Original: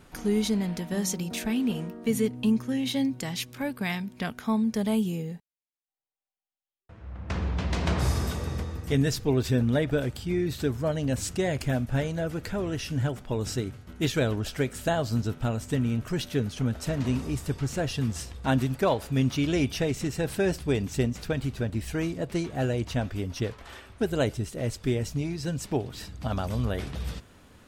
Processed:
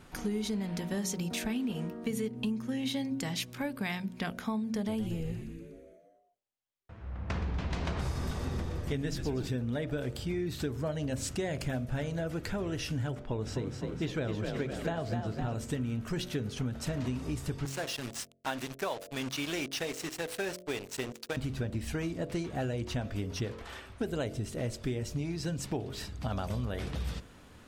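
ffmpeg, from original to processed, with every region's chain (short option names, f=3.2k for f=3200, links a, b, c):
-filter_complex "[0:a]asettb=1/sr,asplit=3[a][b][c];[a]atrim=end=4.724[d];[b]atrim=start=4.72:end=9.47,asetpts=PTS-STARTPTS,afade=t=in:d=0.004:c=qsin,afade=t=out:st=4.746:d=0.004:c=qsin,highshelf=f=5.5k:g=-4,asplit=9[e][f][g][h][i][j][k][l][m];[f]adelay=121,afreqshift=-110,volume=-10dB[n];[g]adelay=242,afreqshift=-220,volume=-14dB[o];[h]adelay=363,afreqshift=-330,volume=-18dB[p];[i]adelay=484,afreqshift=-440,volume=-22dB[q];[j]adelay=605,afreqshift=-550,volume=-26.1dB[r];[k]adelay=726,afreqshift=-660,volume=-30.1dB[s];[l]adelay=847,afreqshift=-770,volume=-34.1dB[t];[m]adelay=968,afreqshift=-880,volume=-38.1dB[u];[e][n][o][p][q][r][s][t][u]amix=inputs=9:normalize=0,atrim=end_sample=209475[v];[c]atrim=start=9.466[w];[d][v]acrossfade=d=0.004:c1=hsin:c2=qsin[x];[x][w]acrossfade=d=0.004:c1=qsin:c2=hsin,asettb=1/sr,asplit=3[y][z][aa];[y]atrim=end=13.154[ab];[z]atrim=start=13.15:end=15.55,asetpts=PTS-STARTPTS,afade=t=in:d=0.004:c=qsin,afade=t=out:st=2.396:d=0.004:c=qsin,lowpass=f=2.6k:p=1,asplit=7[ac][ad][ae][af][ag][ah][ai];[ad]adelay=255,afreqshift=34,volume=-6.5dB[aj];[ae]adelay=510,afreqshift=68,volume=-12.3dB[ak];[af]adelay=765,afreqshift=102,volume=-18.2dB[al];[ag]adelay=1020,afreqshift=136,volume=-24dB[am];[ah]adelay=1275,afreqshift=170,volume=-29.9dB[an];[ai]adelay=1530,afreqshift=204,volume=-35.7dB[ao];[ac][aj][ak][al][am][an][ao]amix=inputs=7:normalize=0,atrim=end_sample=105840[ap];[aa]atrim=start=15.546[aq];[ab][ap]acrossfade=d=0.004:c1=hsin:c2=qsin[ar];[ar][aq]acrossfade=d=0.004:c1=qsin:c2=hsin,asettb=1/sr,asplit=3[as][at][au];[as]atrim=end=17.654[av];[at]atrim=start=17.65:end=21.37,asetpts=PTS-STARTPTS,afade=t=in:d=0.004:c=qsin,afade=t=out:st=3.716:d=0.004:c=qsin,highpass=f=760:p=1,acrusher=bits=5:mix=0:aa=0.5[aw];[au]atrim=start=21.366[ax];[av][aw]acrossfade=d=0.004:c1=hsin:c2=qsin[ay];[ay][ax]acrossfade=d=0.004:c1=qsin:c2=hsin,highshelf=f=11k:g=-4.5,bandreject=f=45.23:t=h:w=4,bandreject=f=90.46:t=h:w=4,bandreject=f=135.69:t=h:w=4,bandreject=f=180.92:t=h:w=4,bandreject=f=226.15:t=h:w=4,bandreject=f=271.38:t=h:w=4,bandreject=f=316.61:t=h:w=4,bandreject=f=361.84:t=h:w=4,bandreject=f=407.07:t=h:w=4,bandreject=f=452.3:t=h:w=4,bandreject=f=497.53:t=h:w=4,bandreject=f=542.76:t=h:w=4,bandreject=f=587.99:t=h:w=4,bandreject=f=633.22:t=h:w=4,bandreject=f=678.45:t=h:w=4,acompressor=threshold=-30dB:ratio=6"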